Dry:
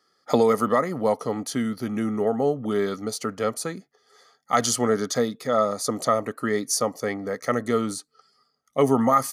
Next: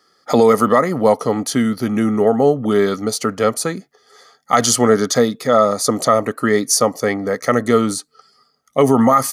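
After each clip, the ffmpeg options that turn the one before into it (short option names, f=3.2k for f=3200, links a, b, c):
-af "alimiter=level_in=10dB:limit=-1dB:release=50:level=0:latency=1,volume=-1dB"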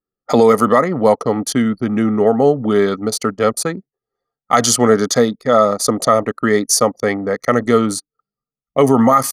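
-af "anlmdn=251,volume=1dB"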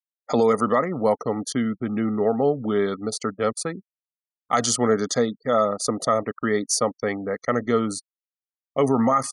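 -af "aresample=22050,aresample=44100,afftfilt=real='re*gte(hypot(re,im),0.0224)':imag='im*gte(hypot(re,im),0.0224)':win_size=1024:overlap=0.75,volume=-8dB"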